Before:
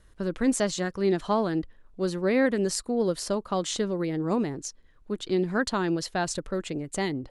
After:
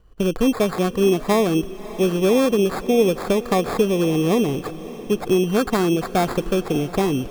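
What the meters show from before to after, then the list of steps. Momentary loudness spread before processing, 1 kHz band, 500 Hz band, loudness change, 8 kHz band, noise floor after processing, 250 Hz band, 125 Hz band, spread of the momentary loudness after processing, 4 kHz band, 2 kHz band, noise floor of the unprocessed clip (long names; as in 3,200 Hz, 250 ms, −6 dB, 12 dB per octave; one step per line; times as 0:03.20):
8 LU, +7.0 dB, +8.5 dB, +7.5 dB, +0.5 dB, −35 dBFS, +7.5 dB, +8.5 dB, 6 LU, +6.0 dB, +3.5 dB, −57 dBFS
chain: noise gate −53 dBFS, range −9 dB
low-pass filter 8,800 Hz 12 dB per octave
low-shelf EQ 410 Hz +10 dB
downward compressor 2.5 to 1, threshold −22 dBFS, peak gain reduction 7.5 dB
decimation without filtering 15×
hollow resonant body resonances 460/730/1,100/3,000 Hz, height 8 dB, ringing for 20 ms
on a send: feedback delay with all-pass diffusion 598 ms, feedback 46%, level −16 dB
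on the sum: level +3 dB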